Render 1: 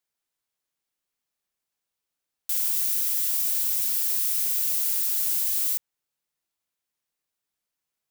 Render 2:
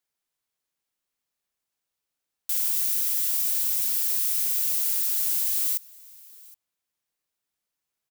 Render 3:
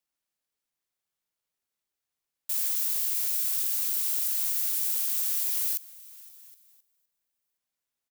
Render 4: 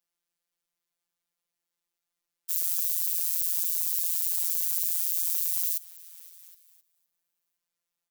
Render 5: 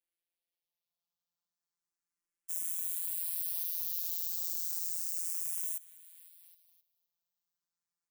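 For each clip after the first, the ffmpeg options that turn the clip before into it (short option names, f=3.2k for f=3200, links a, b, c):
-af "aecho=1:1:769:0.0668"
-af "aecho=1:1:516|1032:0.0708|0.0248,aeval=exprs='val(0)*sin(2*PI*830*n/s+830*0.55/3.4*sin(2*PI*3.4*n/s))':c=same"
-filter_complex "[0:a]acrossover=split=640|4500[a][b][c];[b]alimiter=level_in=21dB:limit=-24dB:level=0:latency=1:release=110,volume=-21dB[d];[a][d][c]amix=inputs=3:normalize=0,afftfilt=real='hypot(re,im)*cos(PI*b)':imag='0':win_size=1024:overlap=0.75,volume=3.5dB"
-filter_complex "[0:a]asplit=2[a][b];[b]afreqshift=0.33[c];[a][c]amix=inputs=2:normalize=1,volume=-5dB"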